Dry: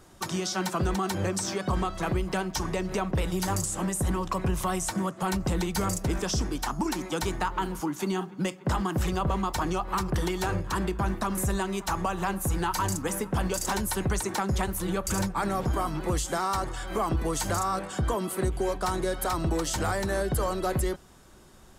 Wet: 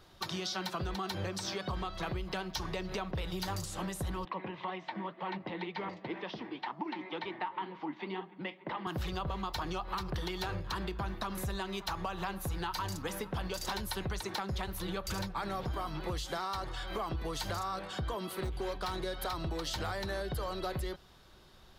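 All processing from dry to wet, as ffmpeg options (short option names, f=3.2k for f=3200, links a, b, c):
-filter_complex "[0:a]asettb=1/sr,asplit=3[a][b][c];[a]atrim=end=4.254[d];[b]atrim=start=4.25:end=8.87,asetpts=PTS-STARTPTS,afade=t=in:d=0.004:c=qsin,afade=t=out:st=4.616:d=0.004:c=qsin,highpass=f=170:w=0.5412,highpass=f=170:w=1.3066,equalizer=f=320:t=q:w=4:g=4,equalizer=f=910:t=q:w=4:g=6,equalizer=f=1.4k:t=q:w=4:g=-6,equalizer=f=2k:t=q:w=4:g=8,lowpass=f=3.2k:w=0.5412,lowpass=f=3.2k:w=1.3066,flanger=delay=1.6:depth=8.1:regen=61:speed=2:shape=sinusoidal[e];[c]atrim=start=8.866[f];[d][e]acrossfade=d=0.004:c1=hsin:c2=qsin[g];[g][f]acrossfade=d=0.004:c1=qsin:c2=hsin,asettb=1/sr,asplit=3[h][i][j];[h]atrim=end=18.324[k];[i]atrim=start=18.32:end=18.96,asetpts=PTS-STARTPTS,afade=t=in:d=0.004:c=qsin,afade=t=out:st=0.636:d=0.004:c=qsin,bandreject=f=680:w=9.1,volume=23.5dB,asoftclip=hard,volume=-23.5dB[l];[j]atrim=start=18.956[m];[k][l]acrossfade=d=0.004:c1=hsin:c2=qsin[n];[n][m]acrossfade=d=0.004:c1=qsin:c2=hsin,equalizer=f=250:t=o:w=1:g=-5,equalizer=f=4k:t=o:w=1:g=10,equalizer=f=8k:t=o:w=1:g=-12,acompressor=threshold=-28dB:ratio=6,volume=-4.5dB"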